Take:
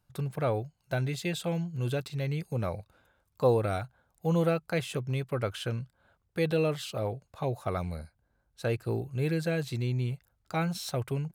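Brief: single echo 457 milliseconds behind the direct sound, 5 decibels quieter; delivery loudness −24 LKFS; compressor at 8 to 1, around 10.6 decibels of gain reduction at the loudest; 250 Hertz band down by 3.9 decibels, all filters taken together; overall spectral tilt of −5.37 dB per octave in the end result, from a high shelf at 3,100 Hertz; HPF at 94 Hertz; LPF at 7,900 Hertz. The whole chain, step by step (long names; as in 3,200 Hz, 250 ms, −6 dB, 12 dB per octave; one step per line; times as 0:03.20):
high-pass filter 94 Hz
low-pass filter 7,900 Hz
parametric band 250 Hz −7 dB
high-shelf EQ 3,100 Hz +3 dB
downward compressor 8 to 1, threshold −31 dBFS
single-tap delay 457 ms −5 dB
level +13 dB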